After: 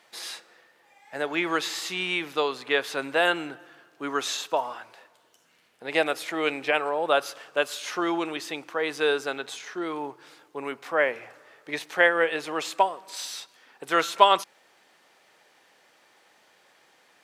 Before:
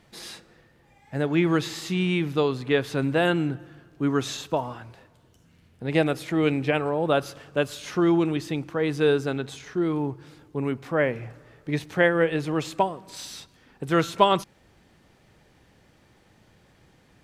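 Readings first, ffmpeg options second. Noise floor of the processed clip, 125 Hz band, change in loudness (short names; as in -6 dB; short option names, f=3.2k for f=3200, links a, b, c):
-62 dBFS, -20.5 dB, -1.5 dB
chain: -af "highpass=630,volume=3.5dB"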